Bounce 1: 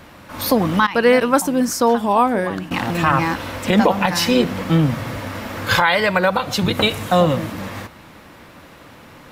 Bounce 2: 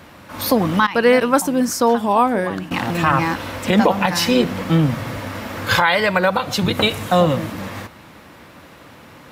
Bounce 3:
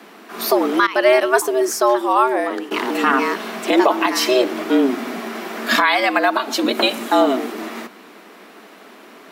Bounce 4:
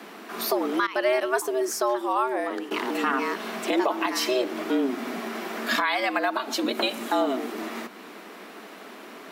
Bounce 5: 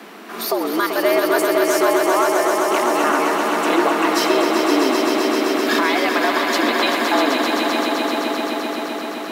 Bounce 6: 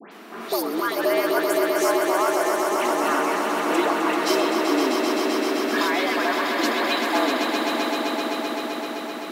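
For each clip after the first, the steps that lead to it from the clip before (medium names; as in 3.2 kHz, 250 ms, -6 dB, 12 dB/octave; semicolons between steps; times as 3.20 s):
high-pass 50 Hz
frequency shift +130 Hz
compression 1.5:1, threshold -37 dBFS, peak gain reduction 10 dB
echo with a slow build-up 129 ms, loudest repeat 5, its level -6.5 dB; trim +4 dB
phase dispersion highs, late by 120 ms, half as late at 2.2 kHz; trim -4.5 dB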